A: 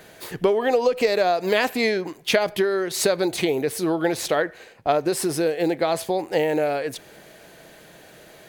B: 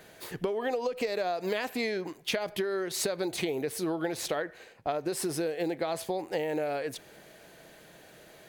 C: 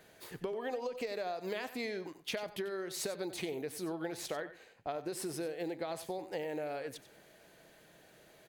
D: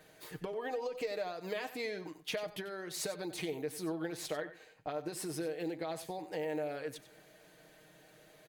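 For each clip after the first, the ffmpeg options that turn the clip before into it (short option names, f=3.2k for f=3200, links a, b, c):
-af "acompressor=threshold=-21dB:ratio=6,volume=-6dB"
-af "aecho=1:1:93:0.2,volume=-7.5dB"
-af "aecho=1:1:6.5:0.51,volume=-1dB"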